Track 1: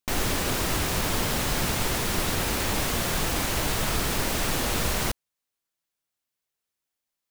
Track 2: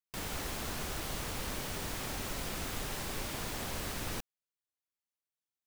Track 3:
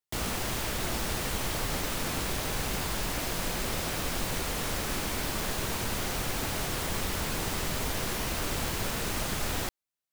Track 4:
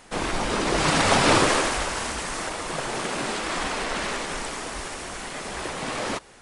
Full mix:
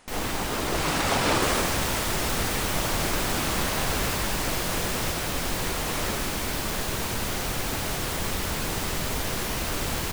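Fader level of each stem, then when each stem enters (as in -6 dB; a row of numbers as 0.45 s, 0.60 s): -7.5 dB, +2.5 dB, +3.0 dB, -5.5 dB; 0.00 s, 0.00 s, 1.30 s, 0.00 s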